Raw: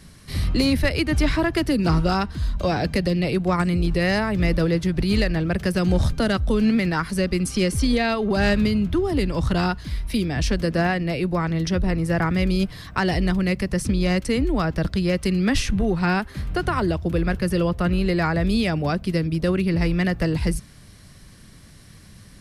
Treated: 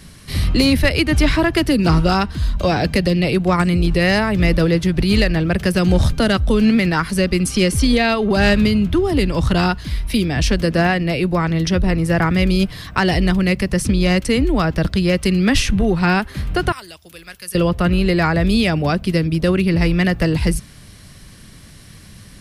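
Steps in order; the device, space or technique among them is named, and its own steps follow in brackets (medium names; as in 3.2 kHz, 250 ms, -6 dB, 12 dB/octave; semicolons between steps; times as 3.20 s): 16.72–17.55 s: pre-emphasis filter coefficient 0.97; presence and air boost (peaking EQ 2.9 kHz +3 dB 0.77 oct; treble shelf 11 kHz +4 dB); trim +5 dB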